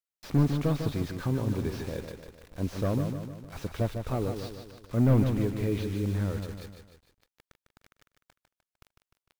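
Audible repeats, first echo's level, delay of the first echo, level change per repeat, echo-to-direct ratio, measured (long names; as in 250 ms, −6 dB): 4, −7.0 dB, 151 ms, −6.0 dB, −5.5 dB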